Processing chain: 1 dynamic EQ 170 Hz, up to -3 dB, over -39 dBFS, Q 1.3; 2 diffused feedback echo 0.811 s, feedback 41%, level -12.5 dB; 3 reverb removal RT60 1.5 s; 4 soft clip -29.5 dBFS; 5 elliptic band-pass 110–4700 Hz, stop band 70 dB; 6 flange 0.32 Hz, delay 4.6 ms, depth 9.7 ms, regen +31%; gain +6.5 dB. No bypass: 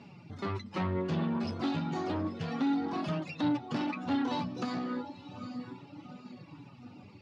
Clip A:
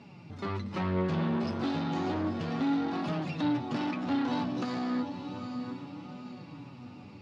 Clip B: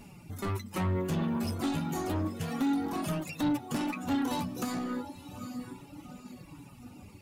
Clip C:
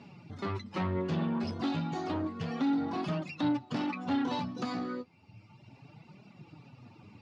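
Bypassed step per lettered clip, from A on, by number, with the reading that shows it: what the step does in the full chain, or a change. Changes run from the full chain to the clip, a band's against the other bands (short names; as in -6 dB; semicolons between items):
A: 3, momentary loudness spread change -2 LU; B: 5, 125 Hz band +1.5 dB; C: 2, momentary loudness spread change -2 LU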